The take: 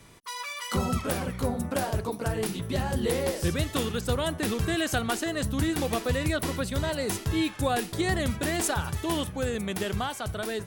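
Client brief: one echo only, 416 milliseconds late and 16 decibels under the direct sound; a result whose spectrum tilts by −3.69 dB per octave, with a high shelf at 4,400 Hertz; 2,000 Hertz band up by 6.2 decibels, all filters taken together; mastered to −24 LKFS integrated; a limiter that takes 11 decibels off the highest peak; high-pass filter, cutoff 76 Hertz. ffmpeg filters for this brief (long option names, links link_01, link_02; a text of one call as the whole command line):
ffmpeg -i in.wav -af "highpass=76,equalizer=frequency=2000:width_type=o:gain=6,highshelf=frequency=4400:gain=9,alimiter=limit=-18.5dB:level=0:latency=1,aecho=1:1:416:0.158,volume=4.5dB" out.wav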